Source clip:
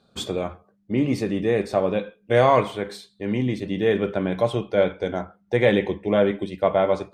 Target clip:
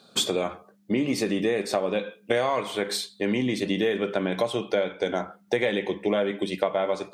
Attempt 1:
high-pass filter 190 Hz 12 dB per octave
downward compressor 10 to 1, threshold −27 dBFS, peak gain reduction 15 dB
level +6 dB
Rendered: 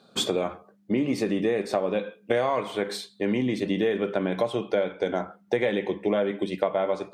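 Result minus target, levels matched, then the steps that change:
4,000 Hz band −3.5 dB
add after high-pass filter: high-shelf EQ 2,600 Hz +8.5 dB

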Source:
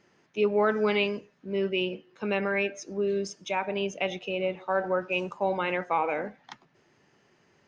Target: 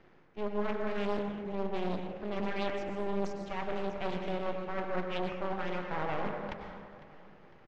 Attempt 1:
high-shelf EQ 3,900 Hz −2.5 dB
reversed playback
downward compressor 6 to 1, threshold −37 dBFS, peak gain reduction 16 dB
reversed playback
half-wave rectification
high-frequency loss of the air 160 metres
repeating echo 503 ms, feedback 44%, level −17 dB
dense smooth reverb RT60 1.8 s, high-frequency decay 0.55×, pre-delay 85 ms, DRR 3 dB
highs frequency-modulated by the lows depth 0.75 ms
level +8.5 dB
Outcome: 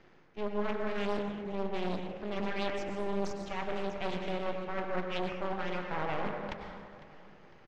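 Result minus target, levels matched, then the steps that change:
8,000 Hz band +4.5 dB
change: high-shelf EQ 3,900 Hz −13 dB

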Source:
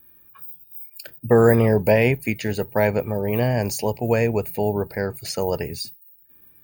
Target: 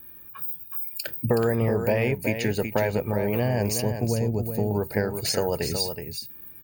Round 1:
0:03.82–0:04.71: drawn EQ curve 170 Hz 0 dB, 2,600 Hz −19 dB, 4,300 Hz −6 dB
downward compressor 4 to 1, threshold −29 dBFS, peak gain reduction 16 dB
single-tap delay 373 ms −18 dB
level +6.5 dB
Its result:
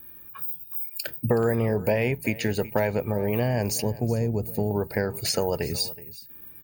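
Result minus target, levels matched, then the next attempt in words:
echo-to-direct −10.5 dB
0:03.82–0:04.71: drawn EQ curve 170 Hz 0 dB, 2,600 Hz −19 dB, 4,300 Hz −6 dB
downward compressor 4 to 1, threshold −29 dBFS, peak gain reduction 16 dB
single-tap delay 373 ms −7.5 dB
level +6.5 dB

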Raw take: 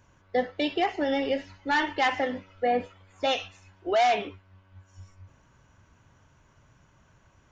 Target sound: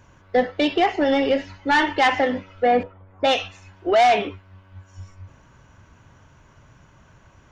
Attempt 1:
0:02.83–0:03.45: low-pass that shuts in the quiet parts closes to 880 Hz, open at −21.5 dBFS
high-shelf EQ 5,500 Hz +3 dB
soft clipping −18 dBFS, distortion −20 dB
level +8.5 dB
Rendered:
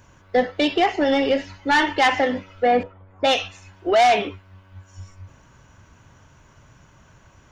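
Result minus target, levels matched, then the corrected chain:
8,000 Hz band +3.5 dB
0:02.83–0:03.45: low-pass that shuts in the quiet parts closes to 880 Hz, open at −21.5 dBFS
high-shelf EQ 5,500 Hz −4.5 dB
soft clipping −18 dBFS, distortion −21 dB
level +8.5 dB

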